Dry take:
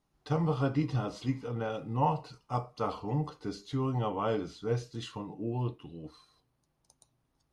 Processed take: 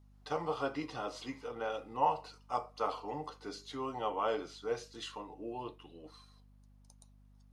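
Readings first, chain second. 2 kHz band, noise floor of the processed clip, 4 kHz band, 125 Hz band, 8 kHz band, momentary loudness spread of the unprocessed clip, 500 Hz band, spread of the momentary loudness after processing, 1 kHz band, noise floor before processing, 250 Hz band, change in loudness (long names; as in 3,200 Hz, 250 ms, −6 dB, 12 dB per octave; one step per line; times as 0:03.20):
0.0 dB, −61 dBFS, 0.0 dB, −20.0 dB, can't be measured, 11 LU, −2.5 dB, 12 LU, −0.5 dB, −77 dBFS, −10.0 dB, −4.5 dB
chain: high-pass filter 460 Hz 12 dB per octave
mains hum 50 Hz, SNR 22 dB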